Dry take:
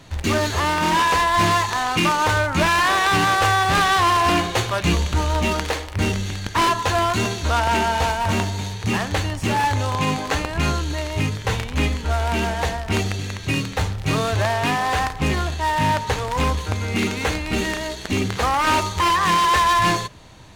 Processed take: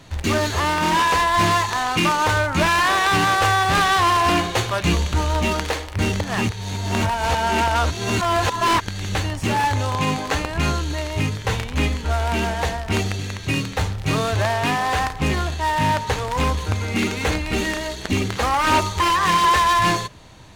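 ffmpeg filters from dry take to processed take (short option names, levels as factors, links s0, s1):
-filter_complex "[0:a]asettb=1/sr,asplit=3[s0][s1][s2];[s0]atrim=end=16.624[s3];[s1]atrim=start=16.62:end=19.53,asetpts=PTS-STARTPTS,afade=t=in:d=0.004:c=qsin,afade=t=out:st=2.906:d=0.004:c=qsin,aphaser=in_gain=1:out_gain=1:delay=3.7:decay=0.26:speed=1.4:type=sinusoidal[s4];[s2]atrim=start=19.526[s5];[s3][s4]acrossfade=d=0.004:c1=hsin:c2=qsin[s6];[s6][s5]acrossfade=d=0.004:c1=qsin:c2=hsin,asplit=3[s7][s8][s9];[s7]atrim=end=6.202[s10];[s8]atrim=start=6.198:end=9.152,asetpts=PTS-STARTPTS,areverse[s11];[s9]atrim=start=9.148[s12];[s10][s11]acrossfade=d=0.004:c1=hsin:c2=hsin[s13];[s13][s12]acrossfade=d=0.004:c1=hsin:c2=hsin"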